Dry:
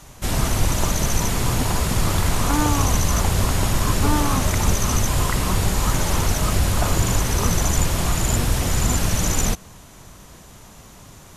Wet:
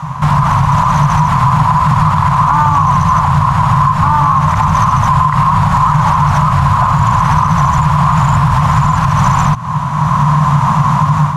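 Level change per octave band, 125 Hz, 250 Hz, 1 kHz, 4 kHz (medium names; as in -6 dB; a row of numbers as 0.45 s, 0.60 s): +11.5 dB, +9.5 dB, +19.0 dB, -1.5 dB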